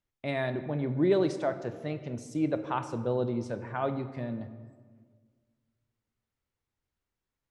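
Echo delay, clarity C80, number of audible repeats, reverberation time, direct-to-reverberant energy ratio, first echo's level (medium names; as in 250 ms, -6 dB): no echo, 12.5 dB, no echo, 1.7 s, 9.5 dB, no echo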